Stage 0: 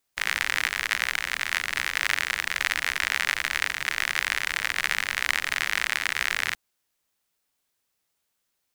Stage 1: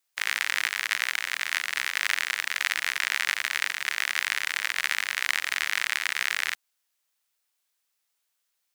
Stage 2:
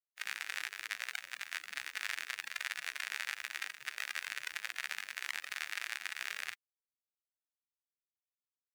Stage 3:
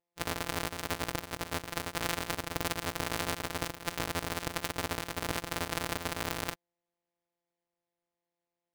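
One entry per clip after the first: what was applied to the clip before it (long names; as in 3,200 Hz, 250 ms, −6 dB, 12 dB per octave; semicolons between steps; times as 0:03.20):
high-pass filter 1,100 Hz 6 dB per octave
spectral dynamics exaggerated over time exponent 3; brickwall limiter −18 dBFS, peak gain reduction 10 dB; level −1 dB
samples sorted by size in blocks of 256 samples; level +6 dB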